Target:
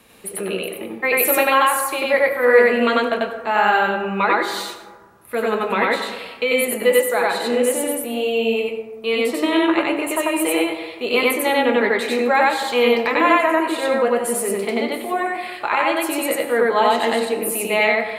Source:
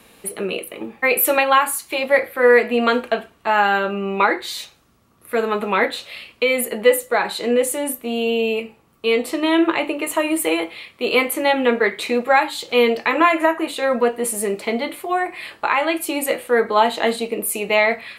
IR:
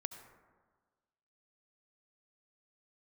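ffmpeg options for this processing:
-filter_complex "[0:a]asplit=2[a][b];[1:a]atrim=start_sample=2205,adelay=93[c];[b][c]afir=irnorm=-1:irlink=0,volume=3dB[d];[a][d]amix=inputs=2:normalize=0,volume=-3dB"

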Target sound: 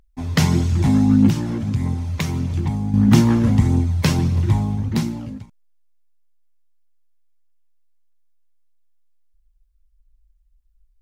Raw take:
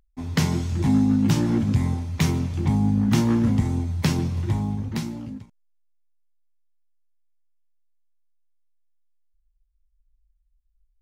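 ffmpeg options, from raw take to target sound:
-filter_complex "[0:a]asettb=1/sr,asplit=3[a][b][c];[a]atrim=end=1.294[d];[b]atrim=start=1.29:end=2.94,asetpts=PTS-STARTPTS,afade=t=in:d=0.004:c=qsin,afade=t=out:st=1.646:d=0.004:c=qsin,acompressor=threshold=-26dB:ratio=3[e];[c]atrim=start=2.936[f];[d][e]acrossfade=d=0.004:c1=hsin:c2=qsin[g];[g][f]acrossfade=d=0.004:c1=qsin:c2=hsin,aphaser=in_gain=1:out_gain=1:delay=2:decay=0.31:speed=1.6:type=triangular,volume=4.5dB"

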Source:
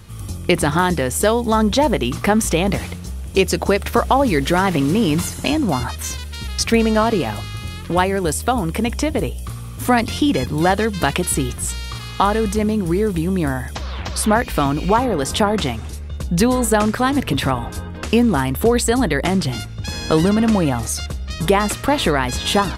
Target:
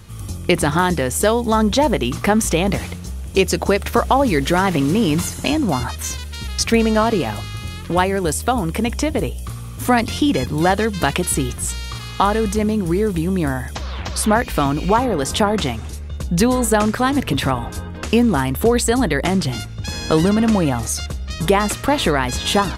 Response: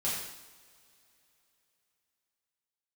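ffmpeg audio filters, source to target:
-af "equalizer=f=6.6k:t=o:w=0.22:g=2.5"

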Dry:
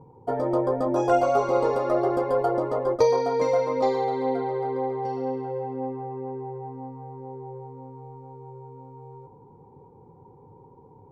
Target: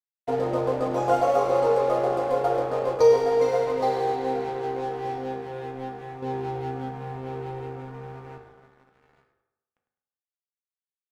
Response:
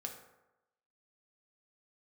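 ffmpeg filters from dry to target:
-filter_complex "[0:a]adynamicequalizer=threshold=0.01:dfrequency=210:dqfactor=0.92:tfrequency=210:tqfactor=0.92:attack=5:release=100:ratio=0.375:range=3:mode=cutabove:tftype=bell,asettb=1/sr,asplit=3[a][b][c];[a]atrim=end=6.224[d];[b]atrim=start=6.22:end=8.38,asetpts=PTS-STARTPTS,afade=t=in:d=0.004:c=qsin,afade=t=out:st=2.156:d=0.004:c=qsin,acontrast=61[e];[c]atrim=start=8.376[f];[d][e]acrossfade=d=0.004:c1=hsin:c2=qsin[g];[g][f]acrossfade=d=0.004:c1=qsin:c2=hsin,aeval=exprs='sgn(val(0))*max(abs(val(0))-0.0119,0)':c=same,asplit=4[h][i][j][k];[i]adelay=103,afreqshift=-54,volume=-12.5dB[l];[j]adelay=206,afreqshift=-108,volume=-21.9dB[m];[k]adelay=309,afreqshift=-162,volume=-31.2dB[n];[h][l][m][n]amix=inputs=4:normalize=0[o];[1:a]atrim=start_sample=2205[p];[o][p]afir=irnorm=-1:irlink=0,volume=2.5dB"

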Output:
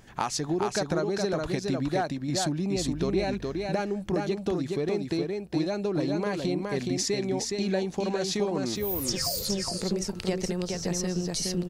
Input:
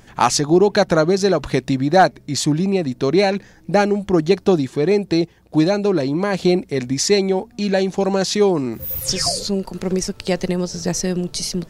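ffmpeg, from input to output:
-filter_complex "[0:a]acompressor=threshold=-19dB:ratio=6,asettb=1/sr,asplit=3[a][b][c];[a]atrim=end=2.764[d];[b]atrim=start=2.76:end=3.25,asetpts=PTS-STARTPTS,afade=t=in:d=0.004:c=qsin,afade=t=out:st=0.486:d=0.004:c=qsin,aeval=exprs='val(0)+0.0224*(sin(2*PI*50*n/s)+sin(2*PI*2*50*n/s)/2+sin(2*PI*3*50*n/s)/3+sin(2*PI*4*50*n/s)/4+sin(2*PI*5*50*n/s)/5)':c=same[e];[c]atrim=start=3.246[f];[d][e]acrossfade=d=0.004:c1=hsin:c2=qsin[g];[g][f]acrossfade=d=0.004:c1=qsin:c2=hsin,aecho=1:1:417:0.668,volume=-6.5dB"

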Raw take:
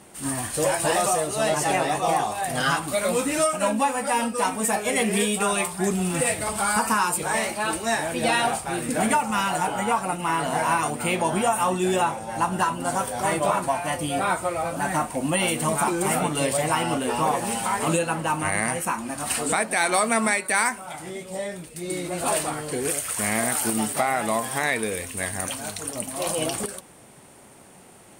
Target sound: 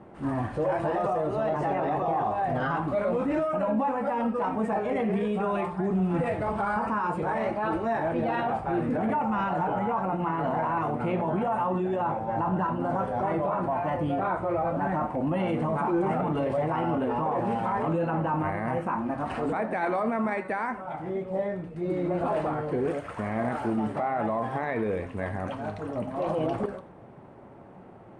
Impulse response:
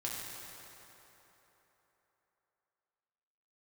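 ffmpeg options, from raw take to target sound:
-filter_complex "[0:a]lowpass=1.1k,alimiter=limit=-23dB:level=0:latency=1:release=10,asplit=2[a][b];[1:a]atrim=start_sample=2205,afade=t=out:st=0.15:d=0.01,atrim=end_sample=7056[c];[b][c]afir=irnorm=-1:irlink=0,volume=-5.5dB[d];[a][d]amix=inputs=2:normalize=0"

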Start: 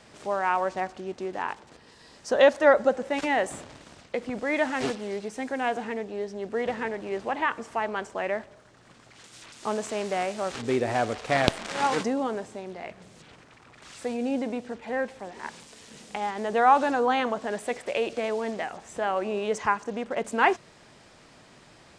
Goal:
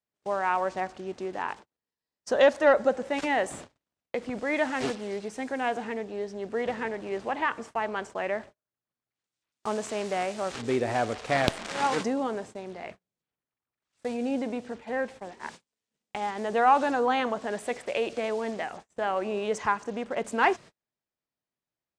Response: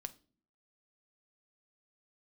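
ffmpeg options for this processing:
-af "acontrast=34,agate=range=-40dB:threshold=-36dB:ratio=16:detection=peak,volume=-6.5dB"

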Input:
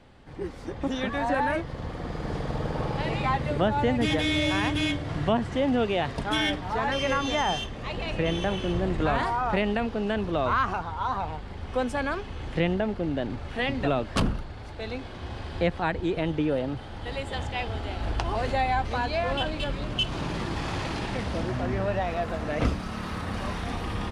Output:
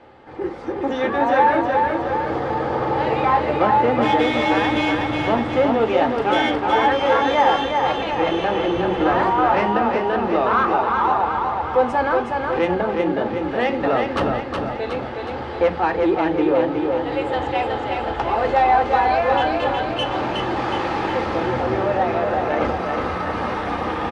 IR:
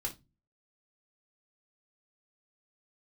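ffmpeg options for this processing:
-filter_complex "[0:a]asoftclip=type=tanh:threshold=-21dB,bandpass=f=790:t=q:w=0.65:csg=0,aecho=1:1:367|734|1101|1468|1835|2202|2569:0.631|0.341|0.184|0.0994|0.0537|0.029|0.0156,asplit=2[a][b];[1:a]atrim=start_sample=2205[c];[b][c]afir=irnorm=-1:irlink=0,volume=-0.5dB[d];[a][d]amix=inputs=2:normalize=0,volume=6.5dB"

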